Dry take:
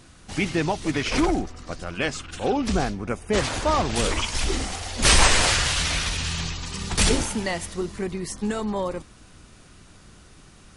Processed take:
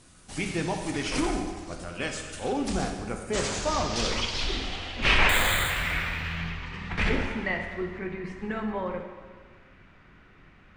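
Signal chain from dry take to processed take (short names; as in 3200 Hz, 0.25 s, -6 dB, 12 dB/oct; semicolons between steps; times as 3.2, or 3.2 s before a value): low-pass sweep 9700 Hz -> 2100 Hz, 3.09–5.41; 5.29–5.7 careless resampling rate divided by 8×, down filtered, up hold; plate-style reverb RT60 1.6 s, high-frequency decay 0.85×, pre-delay 0 ms, DRR 3 dB; gain -7 dB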